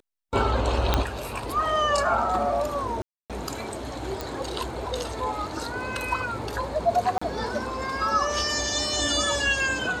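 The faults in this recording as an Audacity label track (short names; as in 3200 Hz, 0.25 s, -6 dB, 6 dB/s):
0.940000	0.940000	pop -6 dBFS
3.020000	3.300000	gap 0.277 s
4.210000	4.210000	pop
7.180000	7.210000	gap 35 ms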